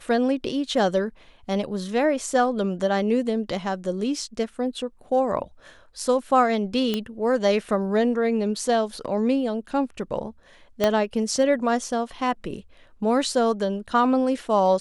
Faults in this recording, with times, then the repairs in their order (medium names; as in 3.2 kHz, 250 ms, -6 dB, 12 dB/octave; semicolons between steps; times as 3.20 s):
6.94 s: pop -11 dBFS
10.84 s: pop -7 dBFS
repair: de-click